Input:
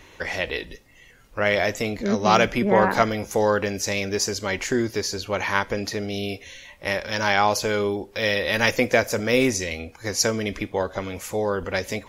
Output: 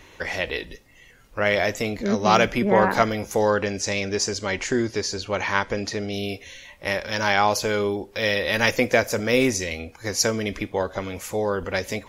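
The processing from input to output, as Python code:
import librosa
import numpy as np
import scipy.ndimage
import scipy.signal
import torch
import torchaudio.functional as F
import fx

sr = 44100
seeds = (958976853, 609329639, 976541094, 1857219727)

y = fx.lowpass(x, sr, hz=9100.0, slope=24, at=(3.5, 6.13))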